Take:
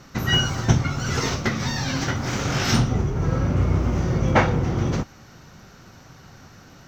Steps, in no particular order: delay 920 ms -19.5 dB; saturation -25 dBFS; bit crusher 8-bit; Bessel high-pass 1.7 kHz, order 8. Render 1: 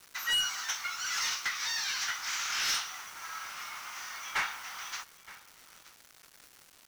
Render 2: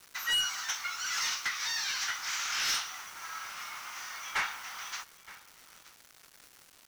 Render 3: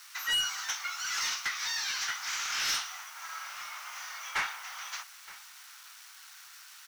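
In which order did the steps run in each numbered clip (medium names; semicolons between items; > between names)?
Bessel high-pass > saturation > bit crusher > delay; Bessel high-pass > bit crusher > saturation > delay; bit crusher > Bessel high-pass > saturation > delay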